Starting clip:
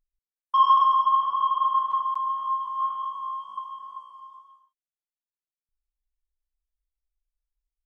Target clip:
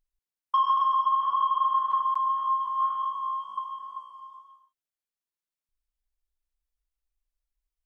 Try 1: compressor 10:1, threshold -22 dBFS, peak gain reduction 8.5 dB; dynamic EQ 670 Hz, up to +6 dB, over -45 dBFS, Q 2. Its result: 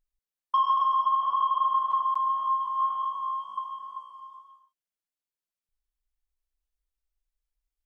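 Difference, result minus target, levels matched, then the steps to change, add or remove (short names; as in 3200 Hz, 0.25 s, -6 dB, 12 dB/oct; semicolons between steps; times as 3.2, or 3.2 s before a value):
500 Hz band +4.5 dB
change: dynamic EQ 1600 Hz, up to +6 dB, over -45 dBFS, Q 2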